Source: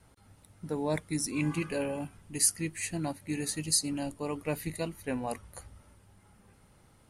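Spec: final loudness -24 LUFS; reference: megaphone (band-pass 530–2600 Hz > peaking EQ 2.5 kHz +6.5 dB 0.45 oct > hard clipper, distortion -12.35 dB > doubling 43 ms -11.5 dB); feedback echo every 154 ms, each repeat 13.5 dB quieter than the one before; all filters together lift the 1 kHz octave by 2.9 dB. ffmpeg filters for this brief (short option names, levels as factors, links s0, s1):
-filter_complex "[0:a]highpass=530,lowpass=2600,equalizer=f=1000:t=o:g=4.5,equalizer=f=2500:t=o:w=0.45:g=6.5,aecho=1:1:154|308:0.211|0.0444,asoftclip=type=hard:threshold=0.0316,asplit=2[s0][s1];[s1]adelay=43,volume=0.266[s2];[s0][s2]amix=inputs=2:normalize=0,volume=5.62"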